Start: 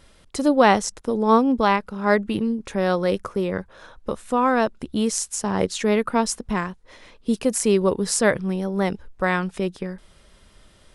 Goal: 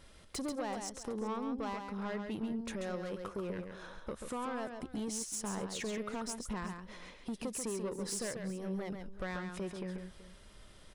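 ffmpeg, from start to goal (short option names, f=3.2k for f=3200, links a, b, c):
-filter_complex "[0:a]acompressor=threshold=-28dB:ratio=6,asoftclip=type=tanh:threshold=-28dB,asplit=2[a][b];[b]aecho=0:1:136|380:0.501|0.141[c];[a][c]amix=inputs=2:normalize=0,volume=-5dB"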